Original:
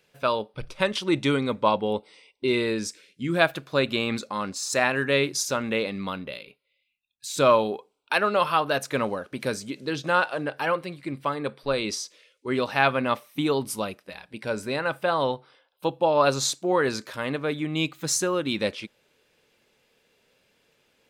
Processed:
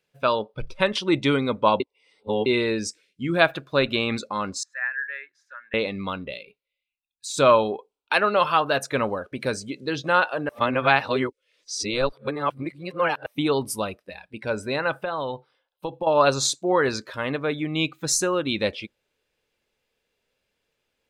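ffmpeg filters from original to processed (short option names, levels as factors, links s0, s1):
-filter_complex "[0:a]asettb=1/sr,asplit=3[s0][s1][s2];[s0]atrim=end=4.634[s3];[s1]atrim=start=4.63:end=5.74,asetpts=PTS-STARTPTS,afade=t=in:d=0.004:c=qsin,afade=t=out:st=1.106:d=0.004:c=qsin,bandpass=f=1700:t=q:w=8.5[s4];[s2]atrim=start=5.736[s5];[s3][s4]acrossfade=d=0.004:c1=hsin:c2=qsin[s6];[s6][s5]acrossfade=d=0.004:c1=qsin:c2=hsin,asettb=1/sr,asplit=3[s7][s8][s9];[s7]atrim=end=14.984[s10];[s8]atrim=start=14.98:end=16.07,asetpts=PTS-STARTPTS,afade=t=in:d=0.004:c=qsin,afade=t=out:st=1.086:d=0.004:c=qsin,acompressor=threshold=0.0501:ratio=6:attack=3.2:release=140:knee=1:detection=peak[s11];[s9]atrim=start=16.066[s12];[s10][s11]acrossfade=d=0.004:c1=hsin:c2=qsin[s13];[s13][s12]acrossfade=d=0.004:c1=qsin:c2=hsin,asplit=5[s14][s15][s16][s17][s18];[s14]atrim=end=1.802[s19];[s15]atrim=start=1.798:end=2.462,asetpts=PTS-STARTPTS,areverse[s20];[s16]atrim=start=2.458:end=10.492[s21];[s17]atrim=start=10.488:end=13.262,asetpts=PTS-STARTPTS,areverse[s22];[s18]atrim=start=13.258[s23];[s19][s20]acrossfade=d=0.004:c1=hsin:c2=hsin[s24];[s24][s21]acrossfade=d=0.004:c1=hsin:c2=hsin[s25];[s25][s22]acrossfade=d=0.004:c1=hsin:c2=hsin[s26];[s26][s23]acrossfade=d=0.004:c1=hsin:c2=hsin,afftdn=nr=13:nf=-43,asubboost=boost=3:cutoff=79,volume=1.33"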